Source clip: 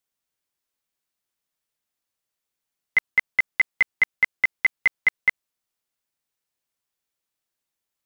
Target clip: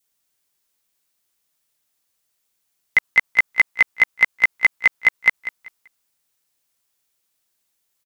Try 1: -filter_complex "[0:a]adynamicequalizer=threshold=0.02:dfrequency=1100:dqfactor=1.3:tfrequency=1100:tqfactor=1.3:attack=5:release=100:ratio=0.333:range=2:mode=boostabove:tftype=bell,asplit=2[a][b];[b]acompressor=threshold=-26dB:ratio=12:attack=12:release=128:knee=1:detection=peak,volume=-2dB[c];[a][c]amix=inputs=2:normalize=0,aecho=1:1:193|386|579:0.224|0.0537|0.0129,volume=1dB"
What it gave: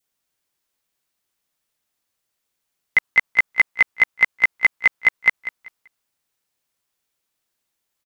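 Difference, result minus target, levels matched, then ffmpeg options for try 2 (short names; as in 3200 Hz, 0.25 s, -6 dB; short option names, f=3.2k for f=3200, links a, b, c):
8000 Hz band -4.0 dB
-filter_complex "[0:a]adynamicequalizer=threshold=0.02:dfrequency=1100:dqfactor=1.3:tfrequency=1100:tqfactor=1.3:attack=5:release=100:ratio=0.333:range=2:mode=boostabove:tftype=bell,asplit=2[a][b];[b]acompressor=threshold=-26dB:ratio=12:attack=12:release=128:knee=1:detection=peak,highshelf=f=3.3k:g=11,volume=-2dB[c];[a][c]amix=inputs=2:normalize=0,aecho=1:1:193|386|579:0.224|0.0537|0.0129,volume=1dB"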